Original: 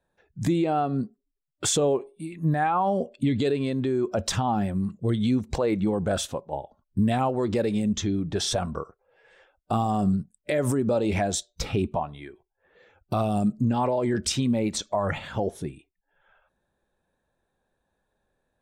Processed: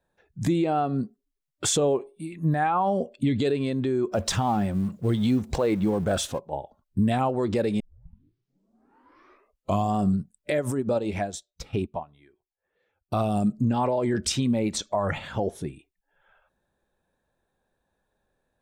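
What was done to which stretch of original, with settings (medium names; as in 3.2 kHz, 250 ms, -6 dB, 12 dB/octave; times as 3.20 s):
4.12–6.39 s: companding laws mixed up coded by mu
7.80 s: tape start 2.16 s
10.59–13.13 s: upward expansion 2.5:1, over -32 dBFS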